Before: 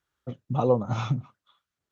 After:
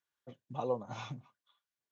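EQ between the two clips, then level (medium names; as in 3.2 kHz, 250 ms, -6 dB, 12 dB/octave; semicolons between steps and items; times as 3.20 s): high-pass 88 Hz; Butterworth band-stop 1.3 kHz, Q 7.2; bass shelf 360 Hz -11 dB; -7.5 dB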